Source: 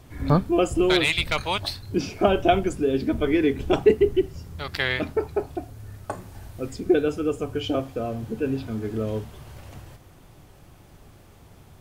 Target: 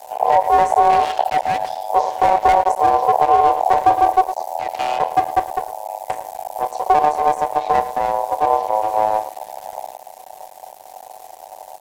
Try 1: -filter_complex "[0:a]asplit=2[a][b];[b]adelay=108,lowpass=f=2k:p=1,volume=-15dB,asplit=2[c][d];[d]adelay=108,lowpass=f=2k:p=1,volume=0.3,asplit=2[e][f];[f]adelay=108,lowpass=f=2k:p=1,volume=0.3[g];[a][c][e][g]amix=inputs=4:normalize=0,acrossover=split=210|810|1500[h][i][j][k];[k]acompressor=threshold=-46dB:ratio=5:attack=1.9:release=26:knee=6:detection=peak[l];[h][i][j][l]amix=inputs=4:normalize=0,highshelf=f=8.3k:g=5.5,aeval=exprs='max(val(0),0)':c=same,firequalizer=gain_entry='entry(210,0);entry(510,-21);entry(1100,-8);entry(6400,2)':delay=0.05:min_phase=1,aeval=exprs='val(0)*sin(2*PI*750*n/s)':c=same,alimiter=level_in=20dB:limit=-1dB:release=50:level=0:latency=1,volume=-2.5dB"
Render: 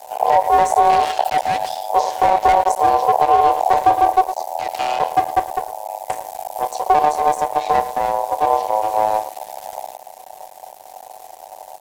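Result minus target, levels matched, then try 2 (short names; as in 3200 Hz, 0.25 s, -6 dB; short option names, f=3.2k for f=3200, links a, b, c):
compressor: peak gain reduction -8.5 dB
-filter_complex "[0:a]asplit=2[a][b];[b]adelay=108,lowpass=f=2k:p=1,volume=-15dB,asplit=2[c][d];[d]adelay=108,lowpass=f=2k:p=1,volume=0.3,asplit=2[e][f];[f]adelay=108,lowpass=f=2k:p=1,volume=0.3[g];[a][c][e][g]amix=inputs=4:normalize=0,acrossover=split=210|810|1500[h][i][j][k];[k]acompressor=threshold=-56.5dB:ratio=5:attack=1.9:release=26:knee=6:detection=peak[l];[h][i][j][l]amix=inputs=4:normalize=0,highshelf=f=8.3k:g=5.5,aeval=exprs='max(val(0),0)':c=same,firequalizer=gain_entry='entry(210,0);entry(510,-21);entry(1100,-8);entry(6400,2)':delay=0.05:min_phase=1,aeval=exprs='val(0)*sin(2*PI*750*n/s)':c=same,alimiter=level_in=20dB:limit=-1dB:release=50:level=0:latency=1,volume=-2.5dB"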